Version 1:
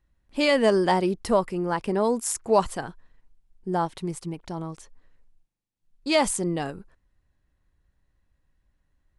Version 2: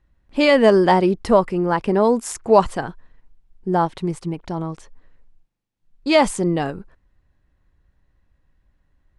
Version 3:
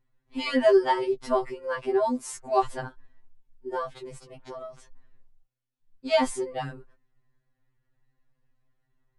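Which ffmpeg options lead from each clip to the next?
-af "aemphasis=mode=reproduction:type=50kf,volume=7dB"
-af "afftfilt=real='re*2.45*eq(mod(b,6),0)':imag='im*2.45*eq(mod(b,6),0)':win_size=2048:overlap=0.75,volume=-5.5dB"

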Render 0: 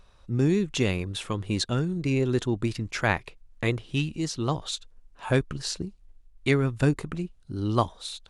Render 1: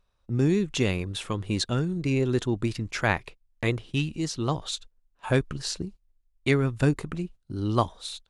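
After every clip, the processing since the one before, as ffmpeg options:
-af "agate=range=-15dB:threshold=-42dB:ratio=16:detection=peak"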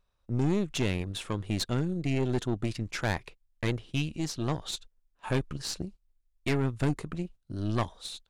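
-af "aeval=exprs='(tanh(12.6*val(0)+0.65)-tanh(0.65))/12.6':c=same"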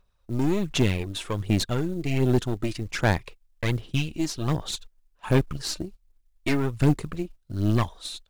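-af "aphaser=in_gain=1:out_gain=1:delay=3.3:decay=0.46:speed=1.3:type=sinusoidal,acrusher=bits=8:mode=log:mix=0:aa=0.000001,volume=3dB"

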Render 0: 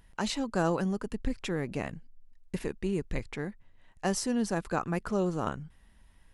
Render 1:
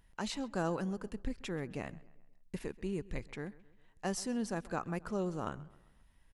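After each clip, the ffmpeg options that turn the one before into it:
-filter_complex "[0:a]asplit=2[a][b];[b]adelay=132,lowpass=f=4.3k:p=1,volume=-20.5dB,asplit=2[c][d];[d]adelay=132,lowpass=f=4.3k:p=1,volume=0.48,asplit=2[e][f];[f]adelay=132,lowpass=f=4.3k:p=1,volume=0.48,asplit=2[g][h];[h]adelay=132,lowpass=f=4.3k:p=1,volume=0.48[i];[a][c][e][g][i]amix=inputs=5:normalize=0,volume=-6.5dB"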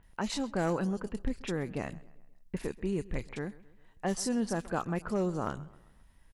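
-filter_complex "[0:a]volume=26.5dB,asoftclip=hard,volume=-26.5dB,acrossover=split=2900[a][b];[b]adelay=30[c];[a][c]amix=inputs=2:normalize=0,volume=5dB"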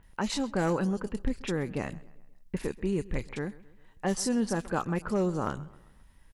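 -af "bandreject=f=680:w=12,volume=3dB"

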